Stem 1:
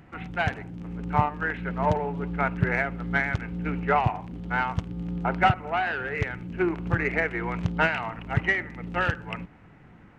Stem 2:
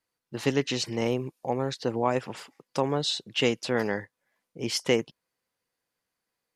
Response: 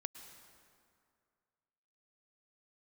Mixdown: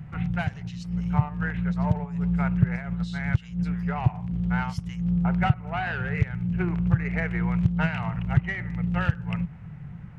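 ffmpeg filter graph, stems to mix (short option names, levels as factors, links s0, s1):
-filter_complex "[0:a]lowshelf=f=210:t=q:w=3:g=10,volume=0.944[s0];[1:a]highpass=f=1100:w=0.5412,highpass=f=1100:w=1.3066,volume=0.141,asplit=2[s1][s2];[s2]apad=whole_len=449052[s3];[s0][s3]sidechaincompress=threshold=0.00112:ratio=8:attack=43:release=164[s4];[s4][s1]amix=inputs=2:normalize=0,acompressor=threshold=0.0631:ratio=2"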